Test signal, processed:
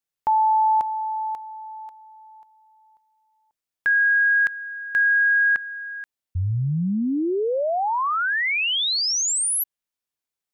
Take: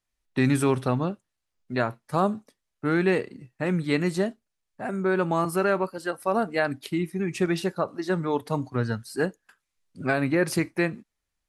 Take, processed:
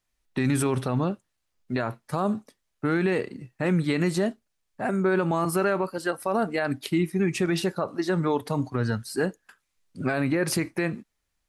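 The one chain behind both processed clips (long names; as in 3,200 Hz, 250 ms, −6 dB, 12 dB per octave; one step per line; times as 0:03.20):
brickwall limiter −19 dBFS
level +4 dB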